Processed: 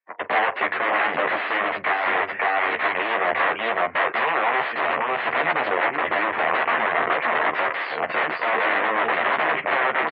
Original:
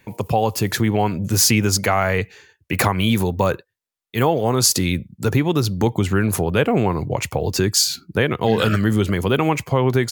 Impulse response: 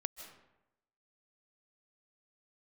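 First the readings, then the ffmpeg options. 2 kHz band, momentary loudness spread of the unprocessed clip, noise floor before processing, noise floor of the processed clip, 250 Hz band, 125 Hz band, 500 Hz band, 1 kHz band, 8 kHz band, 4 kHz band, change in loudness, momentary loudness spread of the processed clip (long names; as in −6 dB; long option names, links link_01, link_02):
+6.5 dB, 7 LU, −74 dBFS, −34 dBFS, −15.5 dB, −28.5 dB, −4.5 dB, +3.5 dB, below −40 dB, −8.5 dB, −2.5 dB, 3 LU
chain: -filter_complex "[0:a]asplit=2[link_01][link_02];[link_02]aecho=0:1:554:0.335[link_03];[link_01][link_03]amix=inputs=2:normalize=0,acompressor=threshold=-25dB:ratio=10,acrusher=bits=8:mix=0:aa=0.000001,aeval=exprs='(mod(21.1*val(0)+1,2)-1)/21.1':channel_layout=same,highpass=480,equalizer=frequency=690:width_type=q:width=4:gain=5,equalizer=frequency=1100:width_type=q:width=4:gain=4,equalizer=frequency=1900:width_type=q:width=4:gain=7,lowpass=frequency=2500:width=0.5412,lowpass=frequency=2500:width=1.3066,dynaudnorm=framelen=130:gausssize=3:maxgain=10.5dB,agate=range=-14dB:threshold=-32dB:ratio=16:detection=peak,asplit=2[link_04][link_05];[link_05]aecho=0:1:13|44:0.562|0.158[link_06];[link_04][link_06]amix=inputs=2:normalize=0,afftdn=noise_reduction=23:noise_floor=-45"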